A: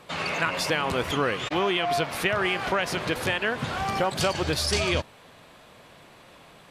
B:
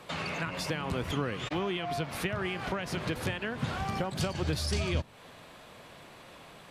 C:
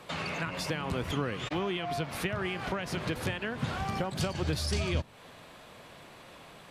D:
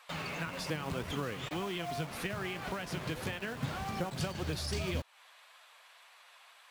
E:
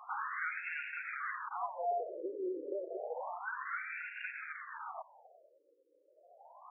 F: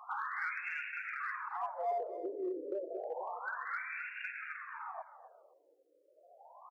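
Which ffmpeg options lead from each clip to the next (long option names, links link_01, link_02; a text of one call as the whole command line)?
ffmpeg -i in.wav -filter_complex "[0:a]acrossover=split=260[link_01][link_02];[link_02]acompressor=threshold=-36dB:ratio=3[link_03];[link_01][link_03]amix=inputs=2:normalize=0" out.wav
ffmpeg -i in.wav -af anull out.wav
ffmpeg -i in.wav -filter_complex "[0:a]flanger=delay=3.6:depth=4.4:regen=64:speed=1.8:shape=triangular,acrossover=split=800[link_01][link_02];[link_01]acrusher=bits=7:mix=0:aa=0.000001[link_03];[link_03][link_02]amix=inputs=2:normalize=0" out.wav
ffmpeg -i in.wav -af "acrusher=bits=2:mode=log:mix=0:aa=0.000001,asoftclip=type=tanh:threshold=-39dB,afftfilt=real='re*between(b*sr/1024,390*pow(2000/390,0.5+0.5*sin(2*PI*0.3*pts/sr))/1.41,390*pow(2000/390,0.5+0.5*sin(2*PI*0.3*pts/sr))*1.41)':imag='im*between(b*sr/1024,390*pow(2000/390,0.5+0.5*sin(2*PI*0.3*pts/sr))/1.41,390*pow(2000/390,0.5+0.5*sin(2*PI*0.3*pts/sr))*1.41)':win_size=1024:overlap=0.75,volume=11dB" out.wav
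ffmpeg -i in.wav -filter_complex "[0:a]asplit=2[link_01][link_02];[link_02]volume=33.5dB,asoftclip=hard,volume=-33.5dB,volume=-10dB[link_03];[link_01][link_03]amix=inputs=2:normalize=0,aecho=1:1:258|516:0.188|0.0358,volume=-2dB" out.wav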